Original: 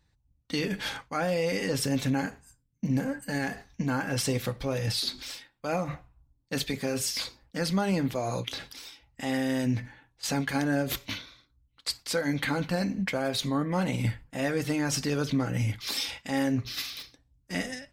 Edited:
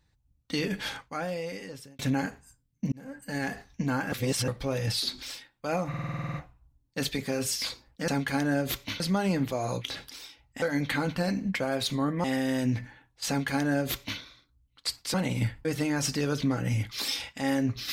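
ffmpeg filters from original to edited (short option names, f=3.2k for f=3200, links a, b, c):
-filter_complex "[0:a]asplit=20[a][b][c][d][e][f][g][h][i][j][k][l][m][n][o][p][q][r][s][t];[a]atrim=end=1.99,asetpts=PTS-STARTPTS,afade=t=out:st=0.72:d=1.27[u];[b]atrim=start=1.99:end=2.92,asetpts=PTS-STARTPTS,afade=t=in:d=0.004:c=hsin,afade=t=out:st=0.926:d=0.004:c=hsin[v];[c]atrim=start=2.92:end=4.122,asetpts=PTS-STARTPTS,afade=t=in:d=0.56[w];[d]atrim=start=4.118:end=4.482,asetpts=PTS-STARTPTS,areverse[x];[e]atrim=start=4.478:end=5.942[y];[f]atrim=start=5.888:end=5.942[z];[g]atrim=start=5.888:end=5.942[aa];[h]atrim=start=5.888:end=5.942[ab];[i]atrim=start=5.888:end=5.942[ac];[j]atrim=start=5.888:end=5.942[ad];[k]atrim=start=5.888:end=5.942[ae];[l]atrim=start=5.888:end=5.942[af];[m]atrim=start=5.888:end=5.942[ag];[n]atrim=start=5.888:end=7.632[ah];[o]atrim=start=10.288:end=11.212[ai];[p]atrim=start=7.628:end=9.252[aj];[q]atrim=start=12.148:end=13.772[ak];[r]atrim=start=9.248:end=12.152[al];[s]atrim=start=13.768:end=14.282[am];[t]atrim=start=14.538[an];[u][v][w]concat=n=3:v=0:a=1[ao];[ao][x]acrossfade=d=0.004:c1=hsin:c2=hsin[ap];[ap][y]acrossfade=d=0.004:c1=hsin:c2=hsin[aq];[aq][z]acrossfade=d=0.004:c1=hsin:c2=hsin[ar];[ar][aa]acrossfade=d=0.004:c1=hsin:c2=hsin[as];[as][ab]acrossfade=d=0.004:c1=hsin:c2=hsin[at];[at][ac]acrossfade=d=0.004:c1=hsin:c2=hsin[au];[au][ad]acrossfade=d=0.004:c1=hsin:c2=hsin[av];[av][ae]acrossfade=d=0.004:c1=hsin:c2=hsin[aw];[aw][af]acrossfade=d=0.004:c1=hsin:c2=hsin[ax];[ax][ag]acrossfade=d=0.004:c1=hsin:c2=hsin[ay];[ay][ah]acrossfade=d=0.004:c1=hsin:c2=hsin[az];[az][ai]acrossfade=d=0.004:c1=hsin:c2=hsin[ba];[ba][aj]acrossfade=d=0.004:c1=hsin:c2=hsin[bb];[bb][ak]acrossfade=d=0.004:c1=hsin:c2=hsin[bc];[bc][al]acrossfade=d=0.004:c1=hsin:c2=hsin[bd];[bd][am]acrossfade=d=0.004:c1=hsin:c2=hsin[be];[be][an]acrossfade=d=0.004:c1=hsin:c2=hsin"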